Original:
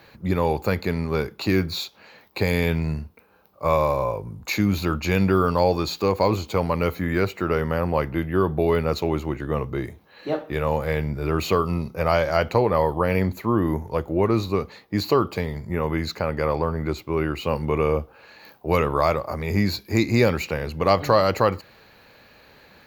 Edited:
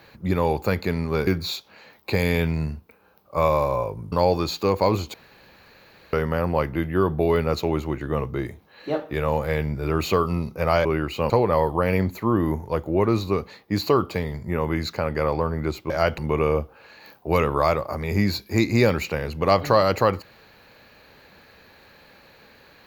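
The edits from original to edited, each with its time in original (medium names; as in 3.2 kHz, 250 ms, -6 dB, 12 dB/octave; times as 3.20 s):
1.27–1.55 s: delete
4.40–5.51 s: delete
6.53–7.52 s: room tone
12.24–12.52 s: swap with 17.12–17.57 s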